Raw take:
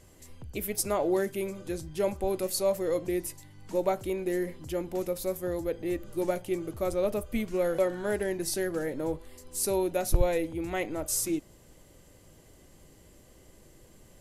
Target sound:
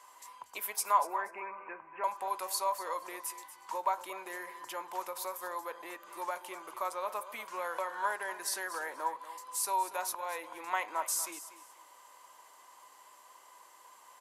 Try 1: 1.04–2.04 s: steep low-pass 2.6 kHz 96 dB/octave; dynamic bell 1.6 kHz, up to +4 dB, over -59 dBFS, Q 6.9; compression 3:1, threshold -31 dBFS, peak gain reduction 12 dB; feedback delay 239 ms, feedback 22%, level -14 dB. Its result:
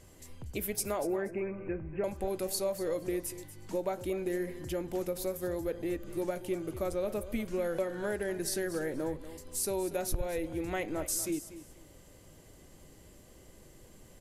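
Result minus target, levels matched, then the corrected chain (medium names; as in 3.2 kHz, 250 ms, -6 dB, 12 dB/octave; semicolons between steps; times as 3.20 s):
1 kHz band -12.5 dB
1.04–2.04 s: steep low-pass 2.6 kHz 96 dB/octave; dynamic bell 1.6 kHz, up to +4 dB, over -59 dBFS, Q 6.9; compression 3:1, threshold -31 dBFS, peak gain reduction 12 dB; resonant high-pass 1 kHz, resonance Q 10; feedback delay 239 ms, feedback 22%, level -14 dB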